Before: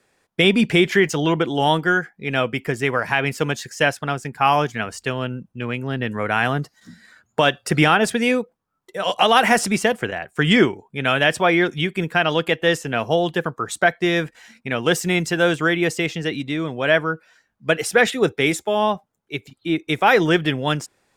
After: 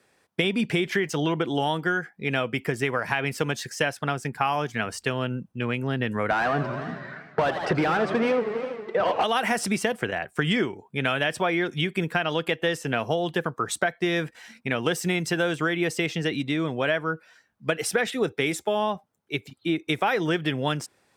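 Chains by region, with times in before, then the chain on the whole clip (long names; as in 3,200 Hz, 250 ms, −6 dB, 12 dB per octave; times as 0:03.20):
0:06.30–0:09.24: head-to-tape spacing loss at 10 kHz 27 dB + mid-hump overdrive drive 24 dB, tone 1,200 Hz, clips at −5.5 dBFS + feedback echo with a swinging delay time 81 ms, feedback 69%, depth 214 cents, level −11.5 dB
whole clip: high-pass filter 64 Hz; notch filter 6,900 Hz, Q 16; downward compressor, threshold −21 dBFS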